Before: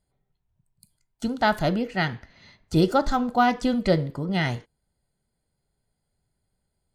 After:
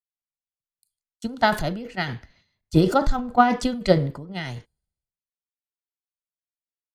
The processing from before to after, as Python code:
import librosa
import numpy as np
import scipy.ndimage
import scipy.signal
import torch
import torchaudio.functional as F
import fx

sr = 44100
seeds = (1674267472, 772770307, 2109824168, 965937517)

y = fx.transient(x, sr, attack_db=7, sustain_db=11)
y = fx.band_widen(y, sr, depth_pct=100)
y = y * 10.0 ** (-5.0 / 20.0)